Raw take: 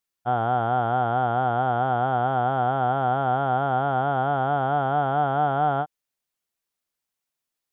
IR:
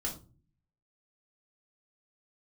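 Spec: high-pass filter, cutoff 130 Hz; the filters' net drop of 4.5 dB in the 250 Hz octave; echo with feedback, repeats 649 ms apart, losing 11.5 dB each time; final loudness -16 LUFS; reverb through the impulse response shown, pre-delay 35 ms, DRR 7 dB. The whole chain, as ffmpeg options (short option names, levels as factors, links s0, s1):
-filter_complex "[0:a]highpass=130,equalizer=f=250:t=o:g=-5,aecho=1:1:649|1298|1947:0.266|0.0718|0.0194,asplit=2[s0][s1];[1:a]atrim=start_sample=2205,adelay=35[s2];[s1][s2]afir=irnorm=-1:irlink=0,volume=0.355[s3];[s0][s3]amix=inputs=2:normalize=0,volume=2.24"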